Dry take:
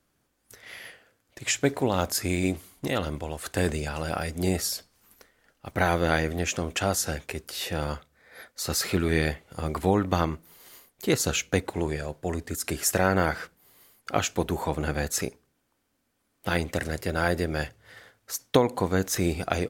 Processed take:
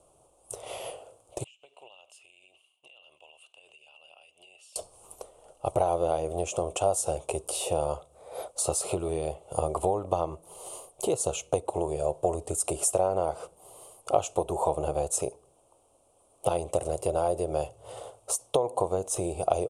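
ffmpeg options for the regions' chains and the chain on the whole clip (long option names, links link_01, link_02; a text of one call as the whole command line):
ffmpeg -i in.wav -filter_complex "[0:a]asettb=1/sr,asplit=3[link_01][link_02][link_03];[link_01]atrim=end=1.444[link_04];[link_02]atrim=start=1.44:end=4.76,asetpts=PTS-STARTPTS,afade=type=in:duration=0.004:curve=qsin,afade=type=out:start_time=3.316:duration=0.004:curve=qsin,bandpass=frequency=2800:width_type=q:width=15,acompressor=threshold=-55dB:ratio=16:attack=3.2:release=140:knee=1:detection=peak[link_05];[link_03]atrim=start=4.756[link_06];[link_04][link_05]acrossfade=duration=0.004:curve1=hsin:curve2=qsin[link_07];[link_07][link_06]acrossfade=duration=0.004:curve1=qsin:curve2=hsin,acompressor=threshold=-36dB:ratio=6,firequalizer=gain_entry='entry(130,0);entry(240,-11);entry(350,4);entry(610,13);entry(1200,1);entry(1700,-26);entry(2700,-2);entry(4600,-9);entry(9300,12);entry(14000,-22)':delay=0.05:min_phase=1,volume=6.5dB" out.wav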